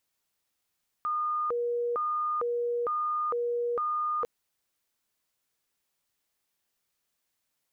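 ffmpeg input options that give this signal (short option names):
-f lavfi -i "aevalsrc='0.0473*sin(2*PI*(849*t+371/1.1*(0.5-abs(mod(1.1*t,1)-0.5))))':d=3.2:s=44100"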